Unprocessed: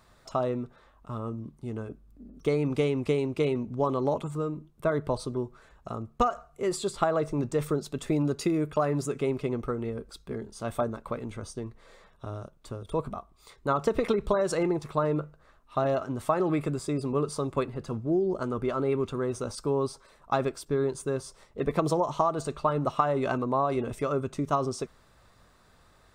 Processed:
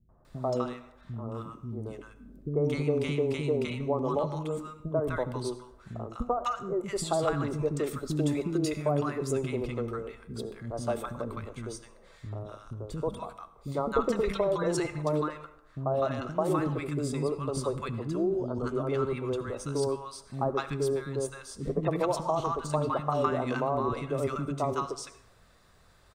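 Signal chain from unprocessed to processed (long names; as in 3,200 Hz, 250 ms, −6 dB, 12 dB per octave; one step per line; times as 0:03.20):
three-band delay without the direct sound lows, mids, highs 90/250 ms, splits 280/1,000 Hz
convolution reverb RT60 0.75 s, pre-delay 63 ms, DRR 14 dB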